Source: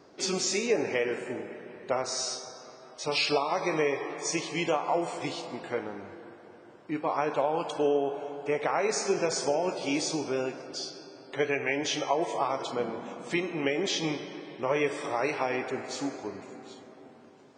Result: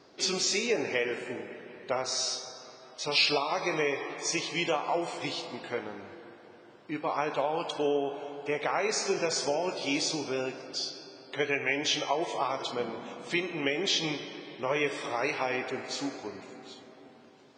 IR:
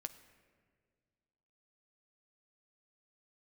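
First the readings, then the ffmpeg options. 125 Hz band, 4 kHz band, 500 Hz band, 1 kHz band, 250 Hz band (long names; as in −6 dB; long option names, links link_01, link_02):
−2.5 dB, +3.5 dB, −2.5 dB, −1.5 dB, −2.5 dB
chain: -filter_complex "[0:a]equalizer=frequency=4000:width_type=o:width=1.7:gain=12,asplit=2[link_01][link_02];[1:a]atrim=start_sample=2205,lowpass=2900[link_03];[link_02][link_03]afir=irnorm=-1:irlink=0,volume=-1.5dB[link_04];[link_01][link_04]amix=inputs=2:normalize=0,volume=-6.5dB"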